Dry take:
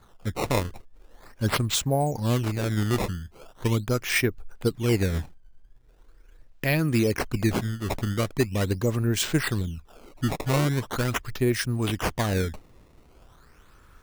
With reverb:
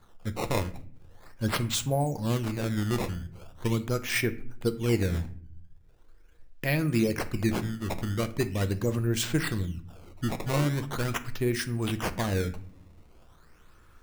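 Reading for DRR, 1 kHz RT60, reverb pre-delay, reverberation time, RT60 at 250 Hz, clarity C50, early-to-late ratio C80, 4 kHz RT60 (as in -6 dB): 9.5 dB, 0.40 s, 6 ms, 0.50 s, 0.95 s, 15.5 dB, 19.5 dB, 0.35 s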